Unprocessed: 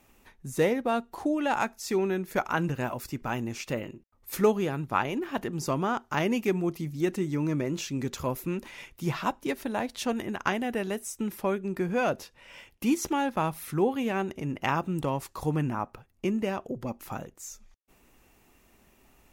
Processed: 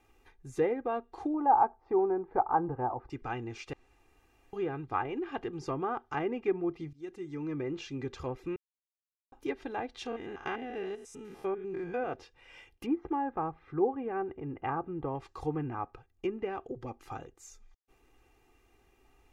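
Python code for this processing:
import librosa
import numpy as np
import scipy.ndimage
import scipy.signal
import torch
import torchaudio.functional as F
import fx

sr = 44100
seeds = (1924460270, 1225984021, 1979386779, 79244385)

y = fx.lowpass_res(x, sr, hz=900.0, q=3.3, at=(1.34, 3.1))
y = fx.spec_steps(y, sr, hold_ms=100, at=(10.05, 12.13), fade=0.02)
y = fx.lowpass(y, sr, hz=1500.0, slope=12, at=(12.86, 15.15))
y = fx.edit(y, sr, fx.room_tone_fill(start_s=3.73, length_s=0.8),
    fx.fade_in_from(start_s=6.93, length_s=0.77, floor_db=-21.0),
    fx.silence(start_s=8.56, length_s=0.76), tone=tone)
y = fx.env_lowpass_down(y, sr, base_hz=1700.0, full_db=-23.5)
y = fx.lowpass(y, sr, hz=3900.0, slope=6)
y = y + 0.69 * np.pad(y, (int(2.5 * sr / 1000.0), 0))[:len(y)]
y = y * librosa.db_to_amplitude(-6.0)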